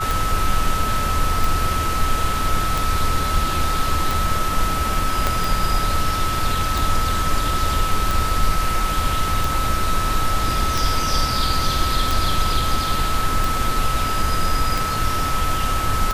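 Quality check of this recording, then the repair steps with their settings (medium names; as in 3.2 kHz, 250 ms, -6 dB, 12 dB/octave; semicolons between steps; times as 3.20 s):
tick 45 rpm
whine 1.3 kHz -23 dBFS
5.27 s: pop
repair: de-click; band-stop 1.3 kHz, Q 30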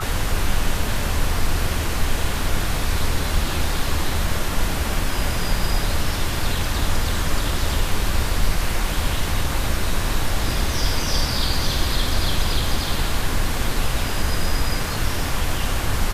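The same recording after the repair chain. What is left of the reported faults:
5.27 s: pop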